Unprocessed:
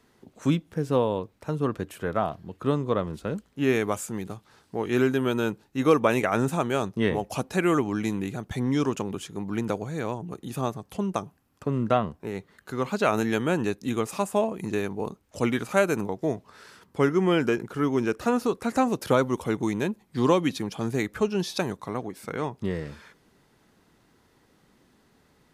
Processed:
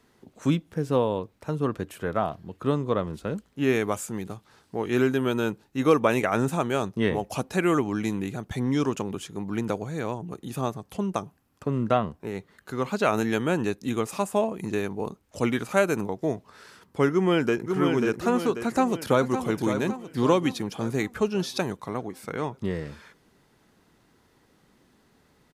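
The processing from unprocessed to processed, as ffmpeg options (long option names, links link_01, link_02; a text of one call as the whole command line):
ffmpeg -i in.wav -filter_complex "[0:a]asplit=2[link_01][link_02];[link_02]afade=type=in:start_time=17.12:duration=0.01,afade=type=out:start_time=17.76:duration=0.01,aecho=0:1:540|1080|1620|2160|2700|3240:0.595662|0.297831|0.148916|0.0744578|0.0372289|0.0186144[link_03];[link_01][link_03]amix=inputs=2:normalize=0,asplit=2[link_04][link_05];[link_05]afade=type=in:start_time=18.65:duration=0.01,afade=type=out:start_time=19.4:duration=0.01,aecho=0:1:560|1120|1680|2240|2800|3360:0.375837|0.187919|0.0939594|0.0469797|0.0234898|0.0117449[link_06];[link_04][link_06]amix=inputs=2:normalize=0" out.wav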